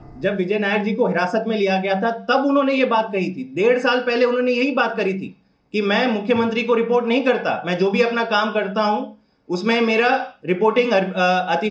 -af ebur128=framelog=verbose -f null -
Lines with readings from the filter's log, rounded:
Integrated loudness:
  I:         -19.2 LUFS
  Threshold: -29.4 LUFS
Loudness range:
  LRA:         1.2 LU
  Threshold: -39.4 LUFS
  LRA low:   -19.9 LUFS
  LRA high:  -18.7 LUFS